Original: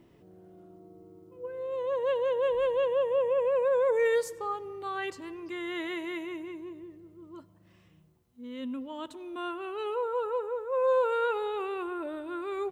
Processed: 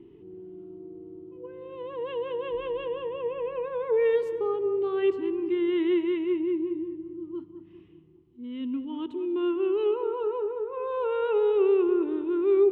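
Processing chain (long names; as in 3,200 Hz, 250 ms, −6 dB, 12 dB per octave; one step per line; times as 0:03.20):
drawn EQ curve 220 Hz 0 dB, 400 Hz +12 dB, 570 Hz −18 dB, 870 Hz −4 dB, 1,600 Hz −10 dB, 3,000 Hz −1 dB, 4,800 Hz −19 dB, 7,700 Hz −24 dB
feedback echo with a low-pass in the loop 199 ms, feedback 56%, low-pass 1,400 Hz, level −10 dB
level +2.5 dB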